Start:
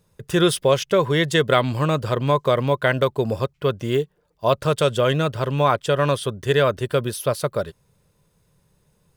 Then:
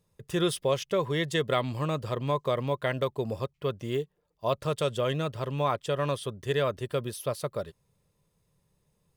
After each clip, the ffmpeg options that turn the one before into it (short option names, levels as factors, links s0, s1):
-af "bandreject=f=1500:w=8.6,volume=0.355"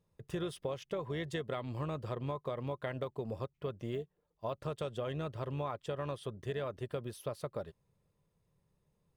-af "highshelf=f=3200:g=-9,acompressor=threshold=0.0316:ratio=6,tremolo=f=230:d=0.333,volume=0.75"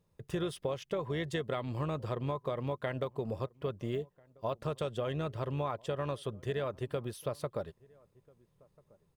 -filter_complex "[0:a]asplit=2[s0][s1];[s1]adelay=1341,volume=0.0501,highshelf=f=4000:g=-30.2[s2];[s0][s2]amix=inputs=2:normalize=0,volume=1.41"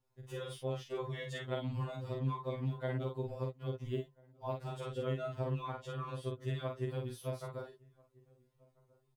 -filter_complex "[0:a]asplit=2[s0][s1];[s1]adelay=45,volume=0.631[s2];[s0][s2]amix=inputs=2:normalize=0,afftfilt=real='re*2.45*eq(mod(b,6),0)':imag='im*2.45*eq(mod(b,6),0)':win_size=2048:overlap=0.75,volume=0.668"